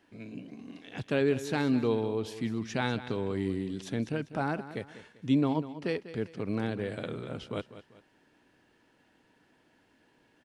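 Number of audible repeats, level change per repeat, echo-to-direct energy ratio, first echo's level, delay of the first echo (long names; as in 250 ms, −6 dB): 2, −9.0 dB, −13.5 dB, −14.0 dB, 196 ms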